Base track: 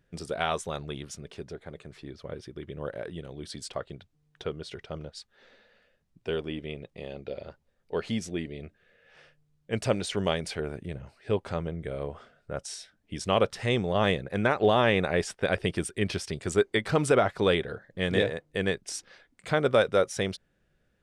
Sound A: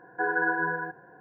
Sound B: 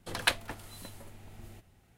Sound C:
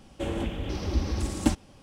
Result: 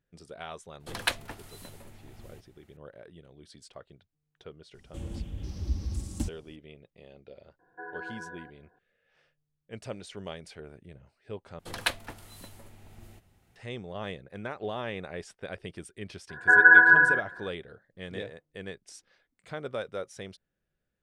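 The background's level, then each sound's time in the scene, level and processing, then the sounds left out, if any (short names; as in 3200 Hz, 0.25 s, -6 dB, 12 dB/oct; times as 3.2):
base track -12.5 dB
0.8 add B -1 dB
4.74 add C -18 dB + tone controls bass +15 dB, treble +12 dB
7.59 add A -15 dB
11.59 replace with B -1.5 dB
16.29 add A -2 dB + band shelf 1500 Hz +15 dB 1.1 oct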